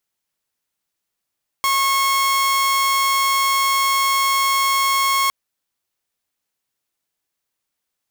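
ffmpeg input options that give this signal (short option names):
-f lavfi -i "aevalsrc='0.224*(2*mod(1090*t,1)-1)':d=3.66:s=44100"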